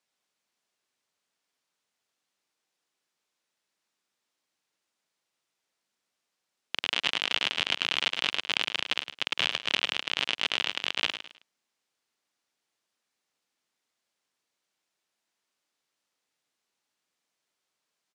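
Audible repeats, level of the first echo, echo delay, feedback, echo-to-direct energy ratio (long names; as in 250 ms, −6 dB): 3, −10.0 dB, 106 ms, 30%, −9.5 dB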